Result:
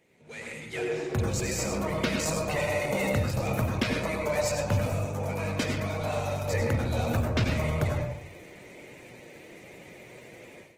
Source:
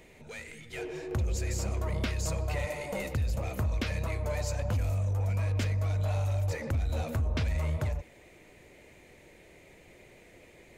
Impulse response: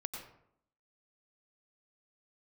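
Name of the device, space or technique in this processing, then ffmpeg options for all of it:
far-field microphone of a smart speaker: -filter_complex "[1:a]atrim=start_sample=2205[a];[0:a][a]afir=irnorm=-1:irlink=0,highpass=f=97:w=0.5412,highpass=f=97:w=1.3066,dynaudnorm=f=230:g=3:m=16.5dB,volume=-8dB" -ar 48000 -c:a libopus -b:a 16k

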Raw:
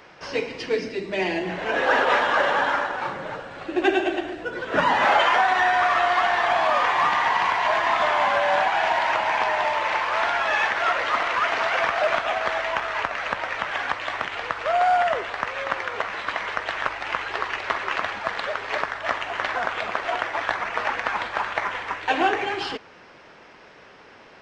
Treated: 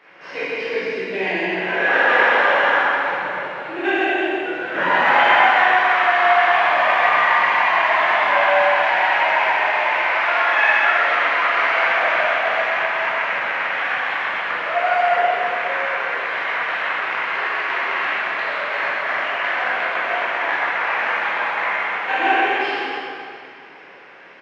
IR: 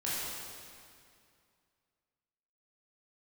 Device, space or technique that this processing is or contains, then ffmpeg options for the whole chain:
PA in a hall: -filter_complex "[0:a]highpass=f=120:w=0.5412,highpass=f=120:w=1.3066,bass=f=250:g=-6,treble=f=4k:g=-10,equalizer=f=2.2k:t=o:w=0.91:g=7,aecho=1:1:128:0.473[a];[1:a]atrim=start_sample=2205[b];[a][b]afir=irnorm=-1:irlink=0,volume=-4dB"

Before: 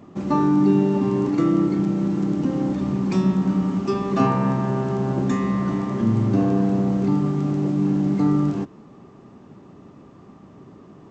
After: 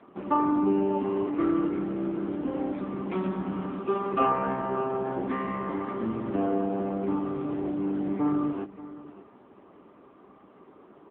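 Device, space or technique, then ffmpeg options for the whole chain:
satellite phone: -filter_complex "[0:a]asettb=1/sr,asplit=3[a][b][c];[a]atrim=end=5.344[d];[b]atrim=start=5.34:end=5.9,asetpts=PTS-STARTPTS,afade=t=in:d=0.004:c=qsin,afade=t=out:st=0.556:d=0.004:c=qsin,lowpass=5.1k[e];[c]atrim=start=5.896[f];[d][e]acrossfade=d=0.004:c1=hsin:c2=qsin[g];[g][f]acrossfade=d=0.004:c1=qsin:c2=hsin,highpass=390,lowpass=3k,aecho=1:1:579:0.158" -ar 8000 -c:a libopencore_amrnb -b:a 6700

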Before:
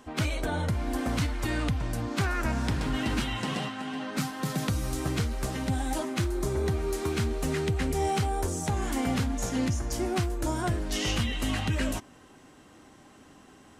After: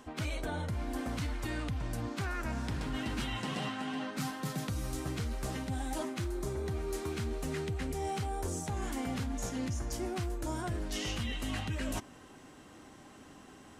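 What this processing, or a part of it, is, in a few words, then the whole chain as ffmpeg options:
compression on the reversed sound: -af "areverse,acompressor=threshold=-33dB:ratio=5,areverse"

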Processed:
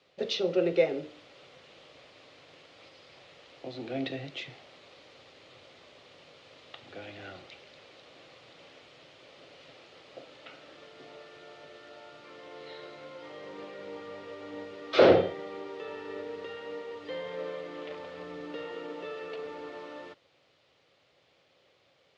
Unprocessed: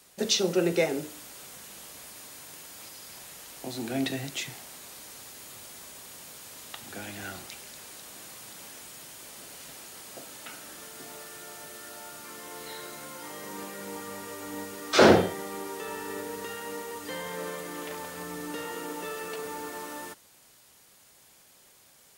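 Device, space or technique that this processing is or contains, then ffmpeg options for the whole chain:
guitar cabinet: -af "highpass=88,equalizer=f=210:t=q:w=4:g=-10,equalizer=f=530:t=q:w=4:g=7,equalizer=f=930:t=q:w=4:g=-6,equalizer=f=1.6k:t=q:w=4:g=-6,lowpass=f=3.9k:w=0.5412,lowpass=f=3.9k:w=1.3066,volume=-3dB"

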